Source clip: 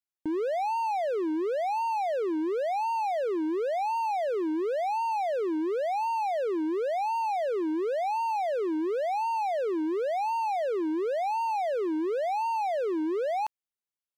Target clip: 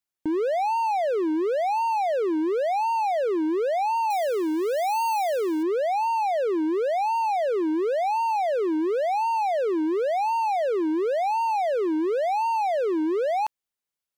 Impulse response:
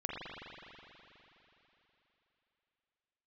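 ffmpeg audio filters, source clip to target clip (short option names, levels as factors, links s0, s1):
-filter_complex "[0:a]asettb=1/sr,asplit=3[s0][s1][s2];[s0]atrim=end=4.104[s3];[s1]atrim=start=4.1:end=5.63,asetpts=PTS-STARTPTS,afade=t=in:d=0.004:c=qsin,afade=t=out:st=1.526:d=0.004:c=qsin,aemphasis=mode=production:type=75fm[s4];[s2]atrim=start=5.626[s5];[s3][s4]acrossfade=d=0.004:c1=hsin:c2=qsin[s6];[s6][s5]acrossfade=d=0.004:c1=qsin:c2=hsin,volume=1.68"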